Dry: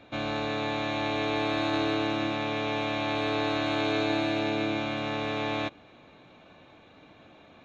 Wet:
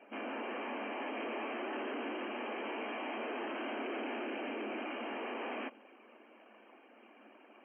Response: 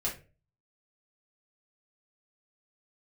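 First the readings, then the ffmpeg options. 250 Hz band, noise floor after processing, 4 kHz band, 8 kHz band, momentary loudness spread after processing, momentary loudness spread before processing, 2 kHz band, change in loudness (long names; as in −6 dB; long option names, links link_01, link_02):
−12.0 dB, −61 dBFS, −15.0 dB, can't be measured, 20 LU, 4 LU, −9.5 dB, −11.0 dB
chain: -af "afftfilt=real='hypot(re,im)*cos(2*PI*random(0))':imag='hypot(re,im)*sin(2*PI*random(1))':win_size=512:overlap=0.75,aresample=11025,asoftclip=type=tanh:threshold=-37.5dB,aresample=44100,afftfilt=real='re*between(b*sr/4096,210,3200)':imag='im*between(b*sr/4096,210,3200)':win_size=4096:overlap=0.75,volume=1.5dB"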